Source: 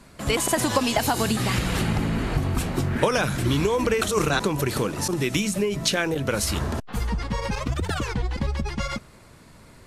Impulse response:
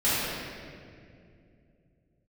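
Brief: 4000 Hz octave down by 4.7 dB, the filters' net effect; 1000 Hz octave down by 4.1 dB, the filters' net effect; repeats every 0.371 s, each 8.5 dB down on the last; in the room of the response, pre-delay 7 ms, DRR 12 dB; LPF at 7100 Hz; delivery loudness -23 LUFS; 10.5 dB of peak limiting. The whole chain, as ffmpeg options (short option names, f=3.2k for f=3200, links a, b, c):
-filter_complex "[0:a]lowpass=7.1k,equalizer=f=1k:t=o:g=-5,equalizer=f=4k:t=o:g=-5.5,alimiter=limit=-18dB:level=0:latency=1,aecho=1:1:371|742|1113|1484:0.376|0.143|0.0543|0.0206,asplit=2[a][b];[1:a]atrim=start_sample=2205,adelay=7[c];[b][c]afir=irnorm=-1:irlink=0,volume=-27dB[d];[a][d]amix=inputs=2:normalize=0,volume=4dB"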